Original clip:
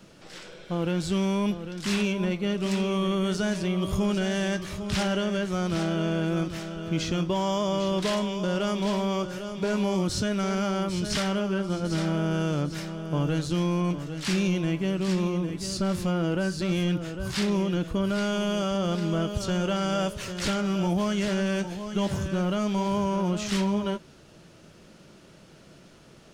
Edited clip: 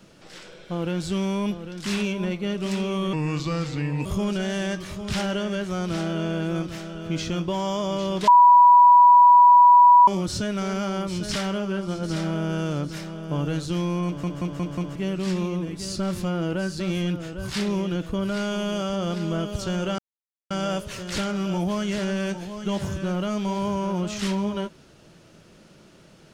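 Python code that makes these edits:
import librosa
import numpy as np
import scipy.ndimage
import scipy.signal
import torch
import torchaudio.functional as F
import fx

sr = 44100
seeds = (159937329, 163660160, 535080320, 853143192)

y = fx.edit(x, sr, fx.speed_span(start_s=3.13, length_s=0.74, speed=0.8),
    fx.bleep(start_s=8.09, length_s=1.8, hz=977.0, db=-9.0),
    fx.stutter_over(start_s=13.87, slice_s=0.18, count=5),
    fx.insert_silence(at_s=19.8, length_s=0.52), tone=tone)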